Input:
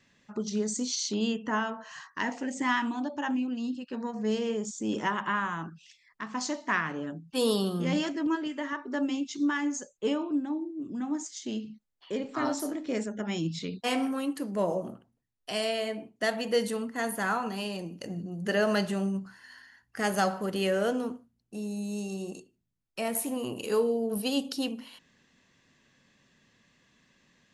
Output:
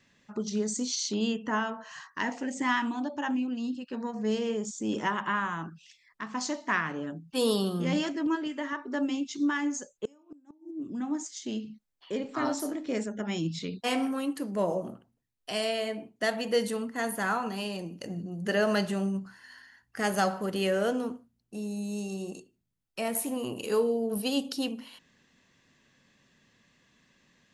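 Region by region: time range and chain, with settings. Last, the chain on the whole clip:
10.05–10.71 resonant high shelf 4900 Hz +7.5 dB, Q 3 + flipped gate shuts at -26 dBFS, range -30 dB
whole clip: dry

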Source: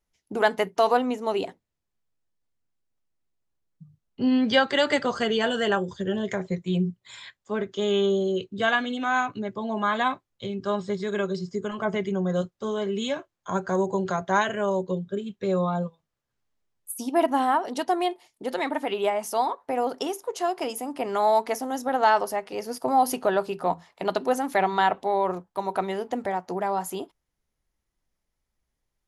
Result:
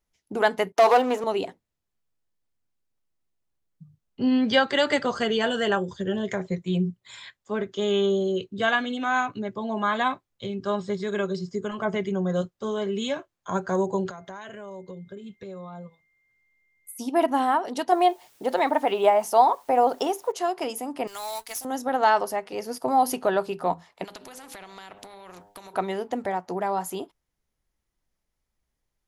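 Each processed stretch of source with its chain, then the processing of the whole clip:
0.72–1.24 sample leveller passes 3 + HPF 640 Hz + tilt shelf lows +6 dB, about 840 Hz
14.09–16.99 compressor, threshold -37 dBFS + whine 2100 Hz -67 dBFS
17.92–20.32 bell 760 Hz +8 dB 1.3 oct + requantised 10-bit, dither triangular
21.07–21.65 G.711 law mismatch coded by A + EQ curve 110 Hz 0 dB, 180 Hz -23 dB, 1200 Hz -9 dB, 9300 Hz +13 dB + overloaded stage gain 28.5 dB
24.04–25.74 de-hum 102 Hz, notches 9 + compressor 5:1, threshold -35 dBFS + spectral compressor 2:1
whole clip: dry

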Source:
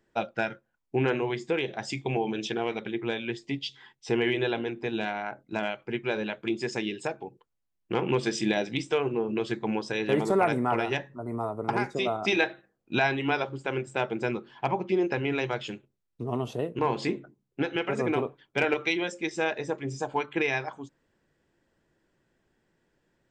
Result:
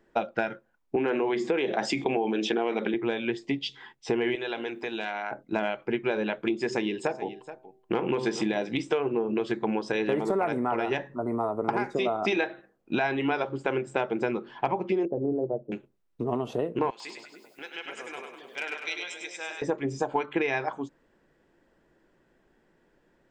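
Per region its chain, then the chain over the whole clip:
0.96–2.94 HPF 170 Hz 24 dB/oct + high shelf 6600 Hz -4.5 dB + fast leveller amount 50%
4.35–5.31 tilt +3 dB/oct + compressor 2:1, threshold -39 dBFS
6.56–8.66 de-hum 128.1 Hz, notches 8 + echo 0.425 s -17.5 dB
15.05–15.72 Chebyshev low-pass 650 Hz, order 4 + upward expander, over -39 dBFS
16.9–19.62 differentiator + upward compressor, threshold -45 dBFS + split-band echo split 680 Hz, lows 0.271 s, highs 0.1 s, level -5 dB
whole clip: high shelf 2600 Hz -10 dB; compressor, threshold -31 dBFS; bell 100 Hz -9.5 dB 1.4 oct; gain +8.5 dB

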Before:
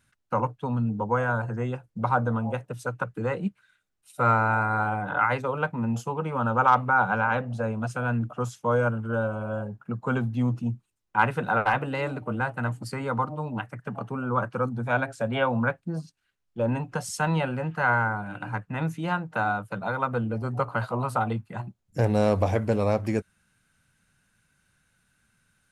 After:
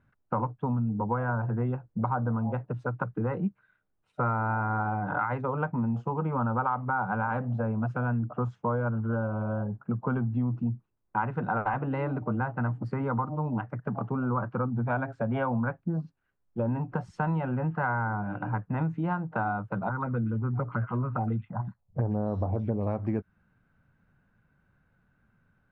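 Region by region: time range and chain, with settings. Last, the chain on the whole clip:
19.89–22.87 envelope phaser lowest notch 250 Hz, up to 2400 Hz, full sweep at -18 dBFS + bands offset in time lows, highs 0.12 s, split 2300 Hz
whole clip: LPF 1100 Hz 12 dB/oct; dynamic EQ 520 Hz, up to -6 dB, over -42 dBFS, Q 2; compressor 5:1, threshold -29 dBFS; gain +4 dB

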